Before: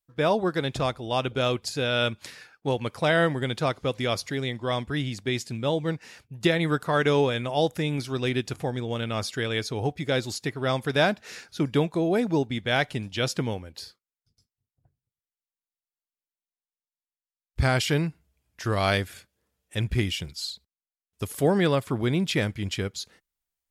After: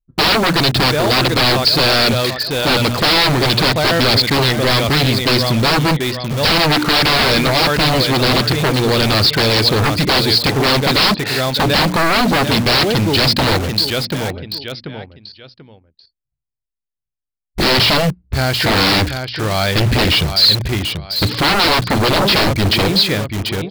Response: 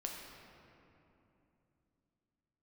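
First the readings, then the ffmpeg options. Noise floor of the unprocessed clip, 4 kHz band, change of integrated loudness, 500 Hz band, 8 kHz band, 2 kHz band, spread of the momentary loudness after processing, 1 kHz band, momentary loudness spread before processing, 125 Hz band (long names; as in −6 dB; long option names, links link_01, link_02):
below −85 dBFS, +19.5 dB, +13.0 dB, +9.0 dB, +14.0 dB, +14.0 dB, 8 LU, +14.0 dB, 11 LU, +11.5 dB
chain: -filter_complex "[0:a]bandreject=frequency=60:width_type=h:width=6,bandreject=frequency=120:width_type=h:width=6,bandreject=frequency=180:width_type=h:width=6,bandreject=frequency=240:width_type=h:width=6,bandreject=frequency=300:width_type=h:width=6,anlmdn=0.158,aecho=1:1:737|1474|2211:0.224|0.0537|0.0129,aresample=11025,aeval=exprs='0.355*sin(PI/2*8.91*val(0)/0.355)':channel_layout=same,aresample=44100,equalizer=frequency=4300:width=3.4:gain=7,asplit=2[link_01][link_02];[link_02]aeval=exprs='(mod(6.68*val(0)+1,2)-1)/6.68':channel_layout=same,volume=-5.5dB[link_03];[link_01][link_03]amix=inputs=2:normalize=0,volume=-2dB"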